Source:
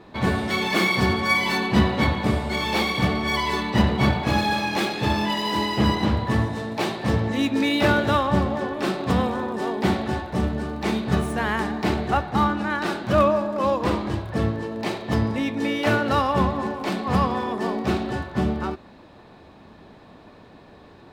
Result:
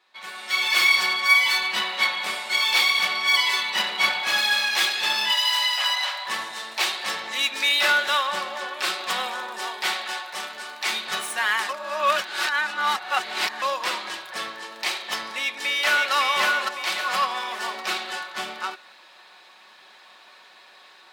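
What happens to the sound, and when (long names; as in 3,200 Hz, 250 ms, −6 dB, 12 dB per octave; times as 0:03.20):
0:05.31–0:06.26: Butterworth high-pass 550 Hz 72 dB per octave
0:09.67–0:10.90: low-shelf EQ 290 Hz −9 dB
0:11.69–0:13.62: reverse
0:15.39–0:16.12: delay throw 560 ms, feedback 40%, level −1.5 dB
whole clip: Bessel high-pass filter 2,100 Hz, order 2; comb filter 5.4 ms, depth 41%; automatic gain control gain up to 15 dB; level −5.5 dB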